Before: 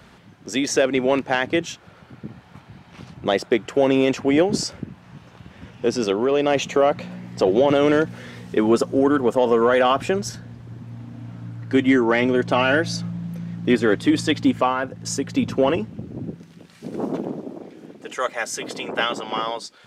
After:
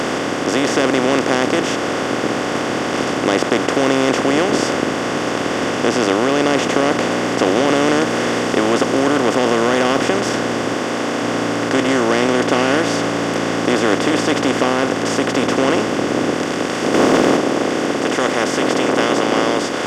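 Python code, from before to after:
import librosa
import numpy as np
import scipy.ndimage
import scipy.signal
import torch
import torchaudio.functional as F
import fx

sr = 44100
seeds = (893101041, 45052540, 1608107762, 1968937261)

y = fx.bin_compress(x, sr, power=0.2)
y = fx.highpass(y, sr, hz=210.0, slope=6, at=(10.74, 11.23))
y = fx.leveller(y, sr, passes=1, at=(16.94, 17.37))
y = y * 10.0 ** (-6.0 / 20.0)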